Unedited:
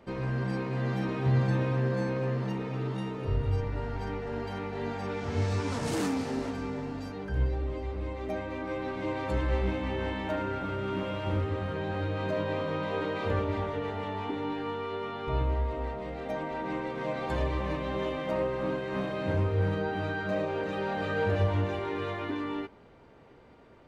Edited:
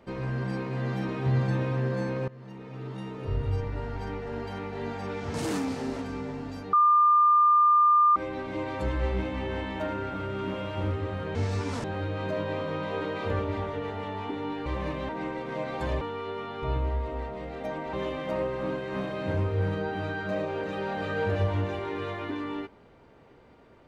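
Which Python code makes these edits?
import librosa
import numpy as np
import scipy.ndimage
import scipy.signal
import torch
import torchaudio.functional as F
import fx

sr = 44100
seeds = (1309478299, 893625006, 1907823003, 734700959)

y = fx.edit(x, sr, fx.fade_in_from(start_s=2.28, length_s=1.14, floor_db=-20.5),
    fx.move(start_s=5.34, length_s=0.49, to_s=11.84),
    fx.bleep(start_s=7.22, length_s=1.43, hz=1200.0, db=-16.5),
    fx.swap(start_s=14.66, length_s=1.92, other_s=17.5, other_length_s=0.43), tone=tone)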